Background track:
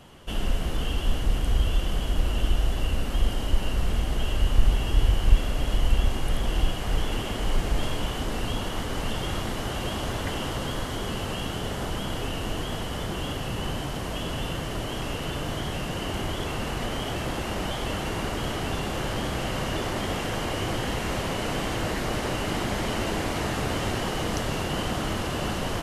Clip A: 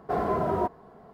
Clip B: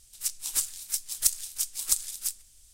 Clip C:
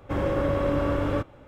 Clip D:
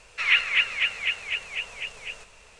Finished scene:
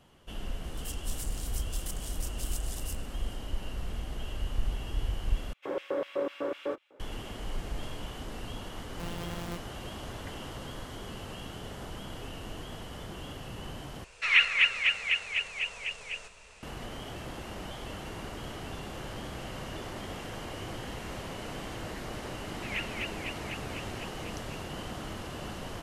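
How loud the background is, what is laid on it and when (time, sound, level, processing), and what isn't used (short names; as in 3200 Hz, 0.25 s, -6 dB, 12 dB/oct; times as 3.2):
background track -11 dB
0.64 add B -3 dB + compressor, threshold -35 dBFS
5.53 replace with C -9 dB + LFO high-pass square 4 Hz 410–2700 Hz
8.9 add A -14 dB + sample sorter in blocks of 256 samples
14.04 replace with D -1.5 dB
22.44 add D -16 dB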